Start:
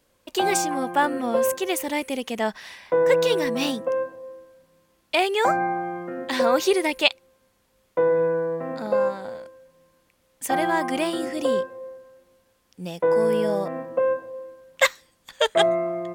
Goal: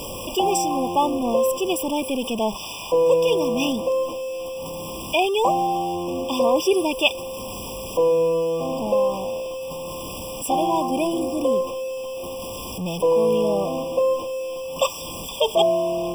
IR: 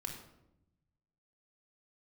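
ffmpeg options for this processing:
-filter_complex "[0:a]aeval=exprs='val(0)+0.5*0.0562*sgn(val(0))':c=same,asettb=1/sr,asplit=3[a][b][c];[a]atrim=end=10.824[d];[b]atrim=start=10.82:end=11.67,asetpts=PTS-STARTPTS,afade=t=in:d=0.004:c=qsin,afade=t=out:st=0.846:d=0.004:c=qsin,equalizer=f=3.1k:t=o:w=0.83:g=-5.5[e];[c]atrim=start=11.666[f];[d][e]acrossfade=d=0.004:c1=hsin:c2=qsin[g];[g][f]acrossfade=d=0.004:c1=qsin:c2=hsin,afftfilt=real='re*eq(mod(floor(b*sr/1024/1200),2),0)':imag='im*eq(mod(floor(b*sr/1024/1200),2),0)':win_size=1024:overlap=0.75"

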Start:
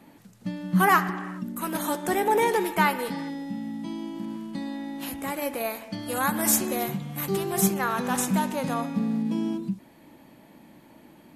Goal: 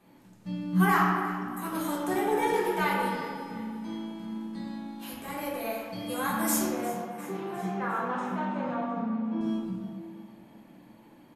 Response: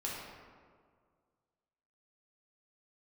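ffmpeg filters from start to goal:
-filter_complex "[0:a]asettb=1/sr,asplit=3[a][b][c];[a]atrim=end=6.684[d];[b]atrim=start=6.68:end=9.41,asetpts=PTS-STARTPTS,afade=t=in:d=0.004:c=qsin,afade=t=out:st=2.726:d=0.004:c=qsin,highpass=220,lowpass=2.1k[e];[c]atrim=start=9.406[f];[d][e]acrossfade=d=0.004:c1=hsin:c2=qsin[g];[g][f]acrossfade=d=0.004:c1=qsin:c2=hsin,aecho=1:1:354|708|1062|1416|1770:0.141|0.0735|0.0382|0.0199|0.0103[h];[1:a]atrim=start_sample=2205,asetrate=52920,aresample=44100[i];[h][i]afir=irnorm=-1:irlink=0,volume=-4.5dB"

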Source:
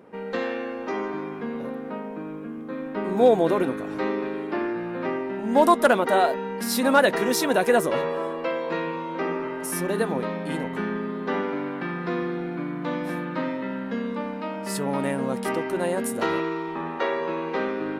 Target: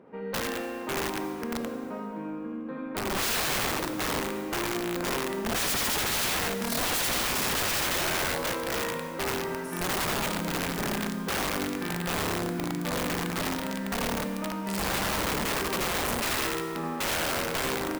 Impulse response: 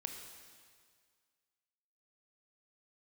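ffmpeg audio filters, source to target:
-filter_complex "[0:a]aemphasis=mode=reproduction:type=75kf,aecho=1:1:81|220:0.668|0.376,aeval=exprs='(mod(11.2*val(0)+1,2)-1)/11.2':c=same,asplit=2[a][b];[1:a]atrim=start_sample=2205,highshelf=f=11k:g=8[c];[b][c]afir=irnorm=-1:irlink=0,volume=2.5dB[d];[a][d]amix=inputs=2:normalize=0,volume=-9dB"

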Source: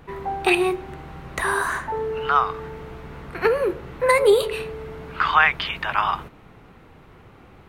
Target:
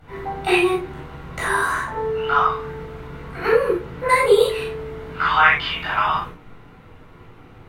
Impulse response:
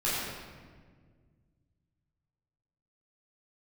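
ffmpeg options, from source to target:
-filter_complex "[1:a]atrim=start_sample=2205,atrim=end_sample=3528,asetrate=35280,aresample=44100[a];[0:a][a]afir=irnorm=-1:irlink=0,volume=-6.5dB"

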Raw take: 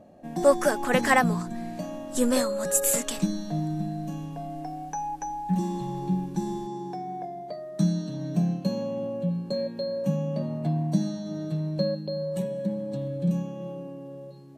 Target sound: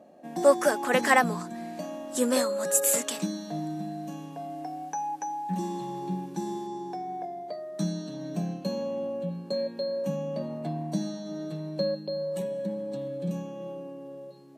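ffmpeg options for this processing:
-af "highpass=250"

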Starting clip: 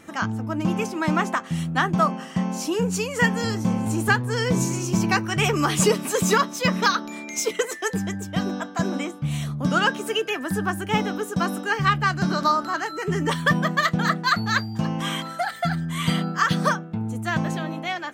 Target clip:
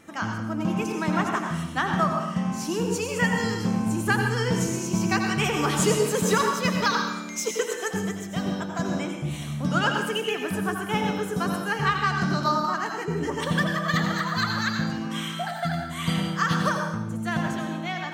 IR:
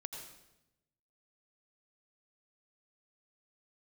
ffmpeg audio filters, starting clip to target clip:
-filter_complex "[0:a]asettb=1/sr,asplit=3[a][b][c];[a]atrim=end=13.054[d];[b]atrim=start=13.05:end=15.47,asetpts=PTS-STARTPTS,afade=t=in:d=0.004:c=qsin,afade=t=out:st=2.416:d=0.004:c=qsin,acrossover=split=1100[e][f];[f]adelay=110[g];[e][g]amix=inputs=2:normalize=0,atrim=end_sample=106722[h];[c]atrim=start=15.466[i];[d][h]acrossfade=d=0.004:c1=hsin:c2=qsin[j];[j][i]acrossfade=d=0.004:c1=qsin:c2=hsin[k];[1:a]atrim=start_sample=2205[l];[k][l]afir=irnorm=-1:irlink=0"

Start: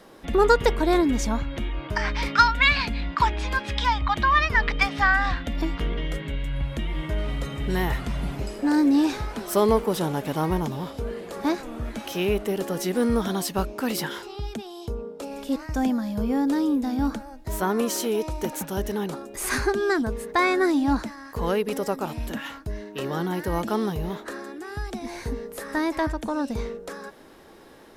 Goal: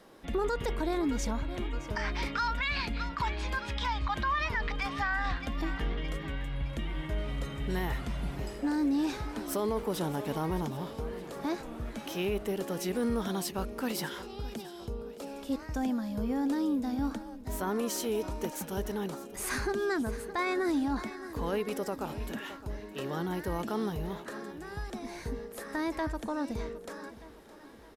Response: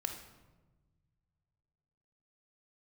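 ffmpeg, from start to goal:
-filter_complex "[0:a]asplit=2[a][b];[b]aecho=0:1:615|1230|1845|2460|3075:0.15|0.0763|0.0389|0.0198|0.0101[c];[a][c]amix=inputs=2:normalize=0,alimiter=limit=-16dB:level=0:latency=1:release=29,volume=-6.5dB"

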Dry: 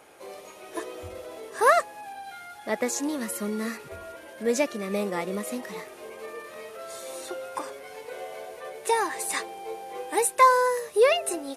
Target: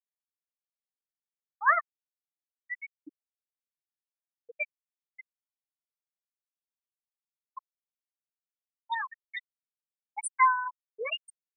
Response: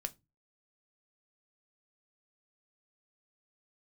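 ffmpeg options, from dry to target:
-filter_complex "[0:a]equalizer=f=480:w=0.76:g=-13.5,acrossover=split=110|1000|5800[a][b][c][d];[c]dynaudnorm=f=230:g=11:m=6.5dB[e];[a][b][e][d]amix=inputs=4:normalize=0,bandreject=f=69.86:t=h:w=4,bandreject=f=139.72:t=h:w=4,bandreject=f=209.58:t=h:w=4,bandreject=f=279.44:t=h:w=4,bandreject=f=349.3:t=h:w=4,bandreject=f=419.16:t=h:w=4,bandreject=f=489.02:t=h:w=4,bandreject=f=558.88:t=h:w=4,bandreject=f=628.74:t=h:w=4,bandreject=f=698.6:t=h:w=4,bandreject=f=768.46:t=h:w=4,bandreject=f=838.32:t=h:w=4,bandreject=f=908.18:t=h:w=4,afftfilt=real='re*gte(hypot(re,im),0.282)':imag='im*gte(hypot(re,im),0.282)':win_size=1024:overlap=0.75,volume=-2.5dB"

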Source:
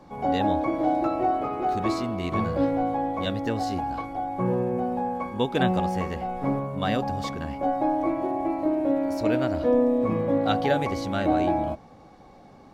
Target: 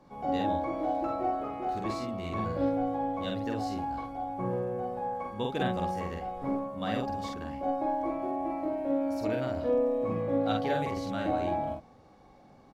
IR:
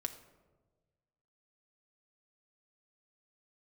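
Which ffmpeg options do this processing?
-filter_complex "[0:a]asplit=2[a][b];[b]adelay=47,volume=-2.5dB[c];[a][c]amix=inputs=2:normalize=0,volume=-8.5dB"

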